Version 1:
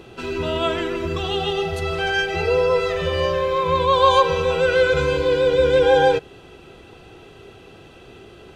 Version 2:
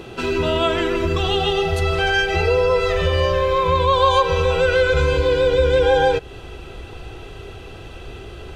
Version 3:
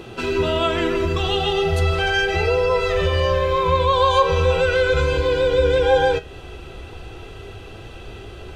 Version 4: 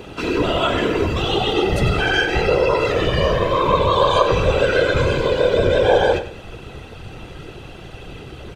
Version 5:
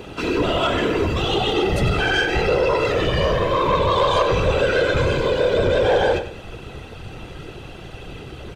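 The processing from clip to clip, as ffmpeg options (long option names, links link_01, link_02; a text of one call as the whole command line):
ffmpeg -i in.wav -af "asubboost=boost=5:cutoff=79,acompressor=threshold=-24dB:ratio=2,volume=6.5dB" out.wav
ffmpeg -i in.wav -af "flanger=delay=8.5:depth=5.6:regen=75:speed=0.38:shape=triangular,volume=3.5dB" out.wav
ffmpeg -i in.wav -filter_complex "[0:a]afftfilt=real='hypot(re,im)*cos(2*PI*random(0))':imag='hypot(re,im)*sin(2*PI*random(1))':win_size=512:overlap=0.75,asplit=2[link_01][link_02];[link_02]aecho=0:1:95|190|285:0.251|0.0703|0.0197[link_03];[link_01][link_03]amix=inputs=2:normalize=0,volume=7dB" out.wav
ffmpeg -i in.wav -af "asoftclip=type=tanh:threshold=-10.5dB" out.wav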